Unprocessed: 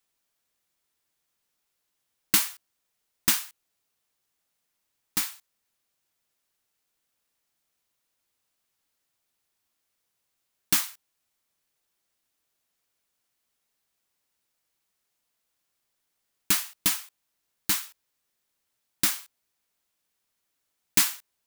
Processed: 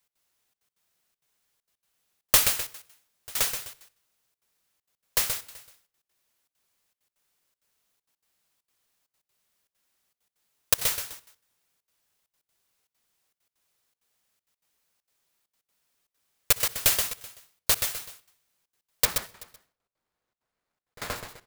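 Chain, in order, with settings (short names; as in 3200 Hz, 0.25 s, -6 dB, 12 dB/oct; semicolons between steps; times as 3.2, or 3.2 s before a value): 19.05–21.16 median filter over 15 samples; HPF 57 Hz; feedback echo 0.127 s, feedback 37%, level -6 dB; step gate "x.xxxxx.x.xxxx" 197 bpm -24 dB; reverb RT60 0.50 s, pre-delay 56 ms, DRR 18 dB; polarity switched at an audio rate 290 Hz; gain +2.5 dB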